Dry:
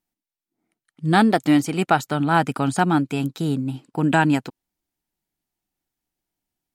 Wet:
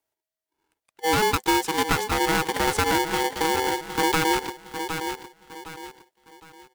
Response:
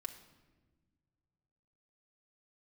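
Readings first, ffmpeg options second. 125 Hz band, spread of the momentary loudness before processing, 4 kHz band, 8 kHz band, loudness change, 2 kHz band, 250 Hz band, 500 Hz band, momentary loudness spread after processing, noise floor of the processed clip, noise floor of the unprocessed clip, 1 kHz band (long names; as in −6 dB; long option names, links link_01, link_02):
−10.5 dB, 8 LU, +6.0 dB, +7.5 dB, −3.0 dB, +0.5 dB, −9.0 dB, +0.5 dB, 18 LU, below −85 dBFS, below −85 dBFS, −0.5 dB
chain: -filter_complex "[0:a]acrossover=split=170|910|2700[link_01][link_02][link_03][link_04];[link_03]alimiter=limit=-21dB:level=0:latency=1[link_05];[link_01][link_02][link_05][link_04]amix=inputs=4:normalize=0,bandreject=frequency=420:width=12,aecho=1:1:761|1522|2283|3044:0.282|0.093|0.0307|0.0101,acompressor=threshold=-18dB:ratio=6,aeval=exprs='val(0)*sgn(sin(2*PI*640*n/s))':channel_layout=same"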